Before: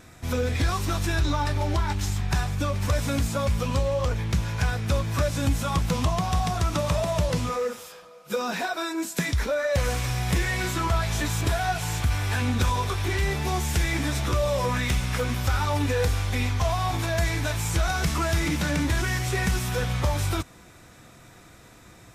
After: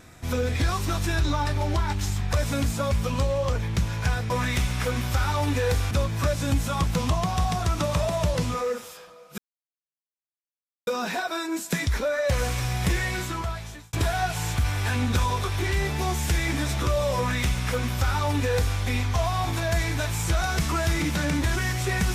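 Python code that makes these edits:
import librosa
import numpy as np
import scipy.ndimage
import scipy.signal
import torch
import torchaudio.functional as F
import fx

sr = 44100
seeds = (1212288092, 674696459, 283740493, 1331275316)

y = fx.edit(x, sr, fx.cut(start_s=2.33, length_s=0.56),
    fx.insert_silence(at_s=8.33, length_s=1.49),
    fx.fade_out_span(start_s=10.44, length_s=0.95),
    fx.duplicate(start_s=14.63, length_s=1.61, to_s=4.86), tone=tone)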